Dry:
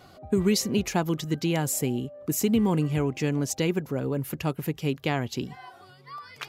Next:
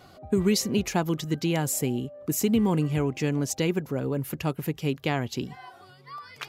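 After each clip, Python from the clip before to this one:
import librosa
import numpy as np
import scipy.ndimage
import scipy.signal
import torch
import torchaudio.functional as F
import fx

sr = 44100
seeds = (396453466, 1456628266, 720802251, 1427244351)

y = x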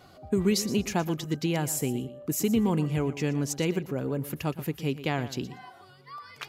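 y = fx.echo_feedback(x, sr, ms=119, feedback_pct=18, wet_db=-14.5)
y = y * 10.0 ** (-2.0 / 20.0)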